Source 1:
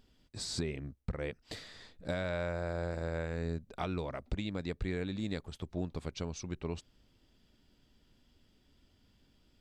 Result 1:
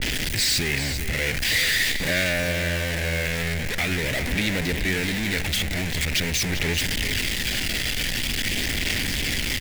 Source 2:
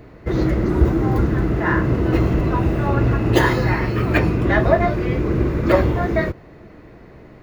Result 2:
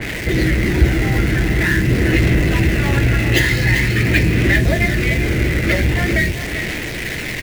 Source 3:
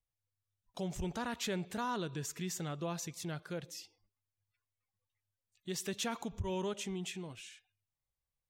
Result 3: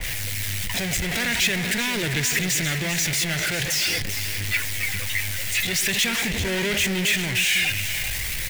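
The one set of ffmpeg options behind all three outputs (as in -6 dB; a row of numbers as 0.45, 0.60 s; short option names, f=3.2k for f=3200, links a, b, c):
-filter_complex "[0:a]aeval=exprs='val(0)+0.5*0.0596*sgn(val(0))':c=same,highshelf=f=1.5k:t=q:w=3:g=9.5,aphaser=in_gain=1:out_gain=1:delay=1.5:decay=0.22:speed=0.45:type=sinusoidal,asplit=2[a][b];[b]acrusher=bits=4:mix=0:aa=0.000001,volume=-7dB[c];[a][c]amix=inputs=2:normalize=0,acrossover=split=330|3000[d][e][f];[e]acompressor=threshold=-15dB:ratio=6[g];[d][g][f]amix=inputs=3:normalize=0,asplit=2[h][i];[i]aecho=0:1:393:0.316[j];[h][j]amix=inputs=2:normalize=0,acompressor=mode=upward:threshold=-25dB:ratio=2.5,adynamicequalizer=threshold=0.0355:dfrequency=2300:dqfactor=0.7:tfrequency=2300:tqfactor=0.7:attack=5:release=100:ratio=0.375:range=2:mode=cutabove:tftype=highshelf,volume=-3.5dB"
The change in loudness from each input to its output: +15.5, +2.5, +17.5 LU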